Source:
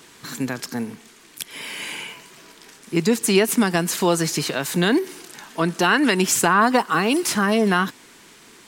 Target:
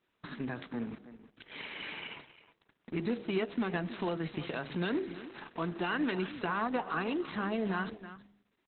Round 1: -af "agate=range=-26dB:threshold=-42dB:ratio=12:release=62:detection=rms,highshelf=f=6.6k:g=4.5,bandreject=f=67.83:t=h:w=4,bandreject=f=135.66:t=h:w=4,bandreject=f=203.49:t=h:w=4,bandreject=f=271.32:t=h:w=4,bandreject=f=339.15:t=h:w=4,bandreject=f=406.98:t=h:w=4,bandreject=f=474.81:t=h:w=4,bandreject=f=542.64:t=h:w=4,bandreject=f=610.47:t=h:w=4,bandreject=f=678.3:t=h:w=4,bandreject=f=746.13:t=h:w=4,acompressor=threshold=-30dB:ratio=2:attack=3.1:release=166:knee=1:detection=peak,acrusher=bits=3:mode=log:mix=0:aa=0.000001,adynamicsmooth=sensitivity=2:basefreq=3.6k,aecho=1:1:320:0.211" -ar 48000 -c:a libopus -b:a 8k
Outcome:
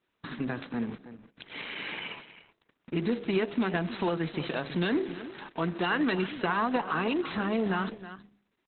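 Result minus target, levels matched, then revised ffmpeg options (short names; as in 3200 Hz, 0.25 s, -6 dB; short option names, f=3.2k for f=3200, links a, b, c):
compressor: peak gain reduction -4.5 dB
-af "agate=range=-26dB:threshold=-42dB:ratio=12:release=62:detection=rms,highshelf=f=6.6k:g=4.5,bandreject=f=67.83:t=h:w=4,bandreject=f=135.66:t=h:w=4,bandreject=f=203.49:t=h:w=4,bandreject=f=271.32:t=h:w=4,bandreject=f=339.15:t=h:w=4,bandreject=f=406.98:t=h:w=4,bandreject=f=474.81:t=h:w=4,bandreject=f=542.64:t=h:w=4,bandreject=f=610.47:t=h:w=4,bandreject=f=678.3:t=h:w=4,bandreject=f=746.13:t=h:w=4,acompressor=threshold=-39dB:ratio=2:attack=3.1:release=166:knee=1:detection=peak,acrusher=bits=3:mode=log:mix=0:aa=0.000001,adynamicsmooth=sensitivity=2:basefreq=3.6k,aecho=1:1:320:0.211" -ar 48000 -c:a libopus -b:a 8k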